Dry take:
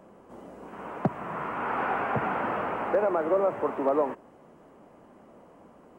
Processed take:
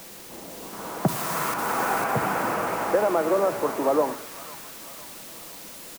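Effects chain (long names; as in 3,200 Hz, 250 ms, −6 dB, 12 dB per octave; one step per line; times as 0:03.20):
downsampling to 8,000 Hz
in parallel at −8 dB: bit-depth reduction 6 bits, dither triangular
0:01.08–0:01.54: on the sum: high-shelf EQ 2,100 Hz +11.5 dB
on a send: delay with a high-pass on its return 501 ms, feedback 51%, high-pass 2,100 Hz, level −3.5 dB
on the sum: rectangular room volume 3,100 cubic metres, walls furnished, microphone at 0.68 metres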